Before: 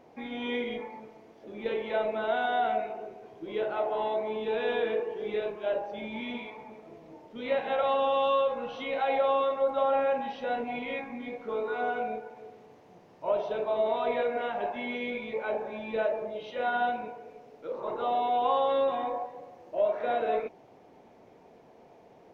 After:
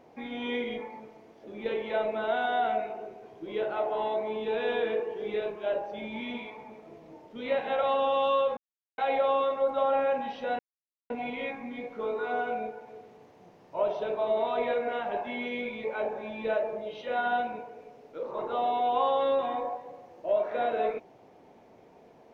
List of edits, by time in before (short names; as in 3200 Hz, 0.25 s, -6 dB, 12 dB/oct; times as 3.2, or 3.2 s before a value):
8.57–8.98 mute
10.59 insert silence 0.51 s